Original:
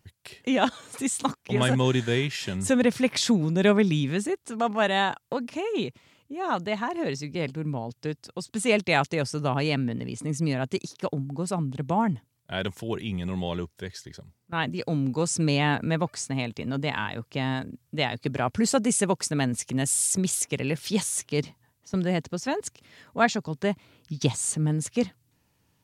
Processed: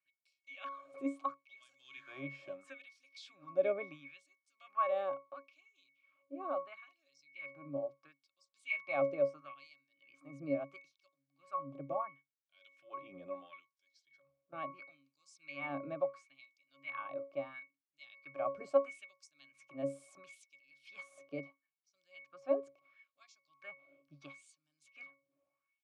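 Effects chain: octave resonator C#, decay 0.29 s; LFO high-pass sine 0.74 Hz 500–5600 Hz; gain +6.5 dB

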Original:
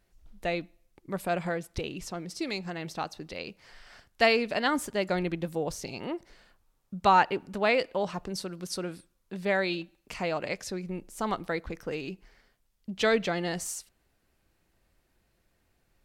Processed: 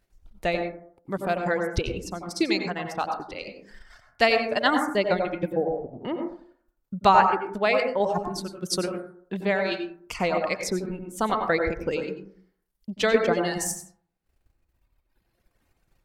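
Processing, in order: reverb removal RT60 1.9 s; 5.52–6.05 steep low-pass 820 Hz 96 dB/oct; transient shaper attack +3 dB, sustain -9 dB; AGC gain up to 7.5 dB; random-step tremolo; plate-style reverb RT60 0.57 s, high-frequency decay 0.25×, pre-delay 80 ms, DRR 4 dB

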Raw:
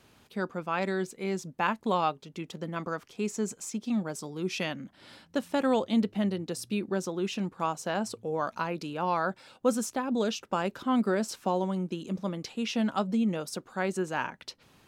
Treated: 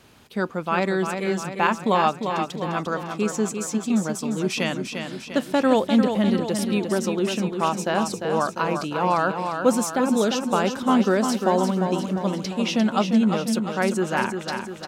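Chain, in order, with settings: feedback echo 0.349 s, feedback 55%, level -6.5 dB; gain +7 dB

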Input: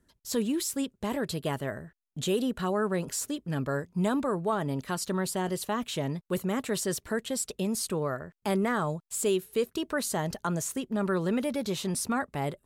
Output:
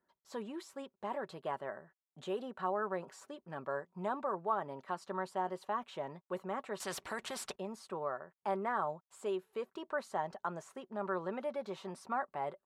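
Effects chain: band-pass 900 Hz, Q 1.6; comb 5.3 ms, depth 34%; 6.8–7.56 spectral compressor 2:1; gain -1.5 dB

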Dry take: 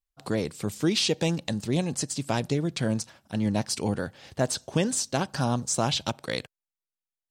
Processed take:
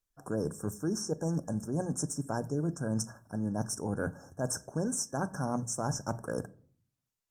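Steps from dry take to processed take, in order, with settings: notches 60/120/180 Hz; FFT band-reject 1700–5300 Hz; reverse; compressor 6:1, threshold -32 dBFS, peak gain reduction 12.5 dB; reverse; shoebox room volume 480 m³, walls furnished, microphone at 0.38 m; gain +2.5 dB; Opus 32 kbps 48000 Hz

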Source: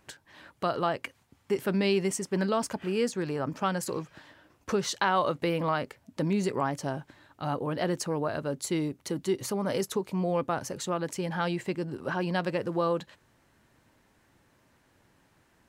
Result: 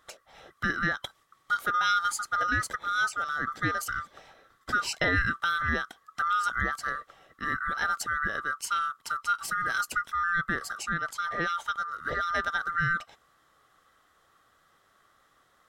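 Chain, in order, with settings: band-swap scrambler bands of 1000 Hz; 10.83–11.49 high shelf 10000 Hz -9.5 dB

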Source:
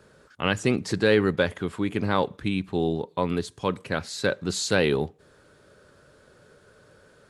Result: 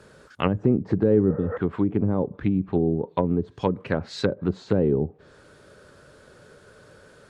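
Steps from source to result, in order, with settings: spectral repair 1.32–1.54, 460–2500 Hz before; treble ducked by the level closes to 400 Hz, closed at -21.5 dBFS; gain +4.5 dB

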